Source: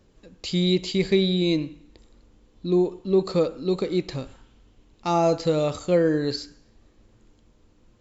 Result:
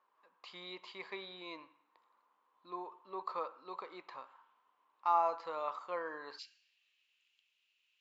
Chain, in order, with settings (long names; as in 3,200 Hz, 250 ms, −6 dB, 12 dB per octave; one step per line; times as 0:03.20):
four-pole ladder band-pass 1,100 Hz, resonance 75%, from 0:06.38 2,900 Hz
level +2.5 dB